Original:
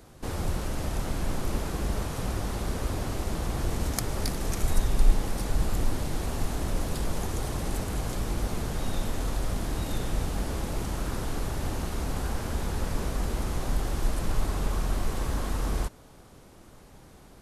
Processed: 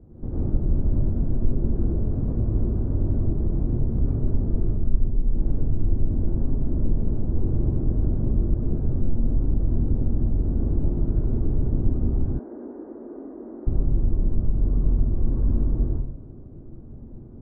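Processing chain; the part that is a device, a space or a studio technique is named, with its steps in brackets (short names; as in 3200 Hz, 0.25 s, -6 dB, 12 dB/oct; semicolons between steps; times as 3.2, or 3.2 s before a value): television next door (compressor 6:1, threshold -29 dBFS, peak gain reduction 16.5 dB; LPF 270 Hz 12 dB/oct; reverb RT60 0.55 s, pre-delay 93 ms, DRR -5 dB); 12.39–13.67 elliptic band-pass 290–1900 Hz, stop band 40 dB; gain +6 dB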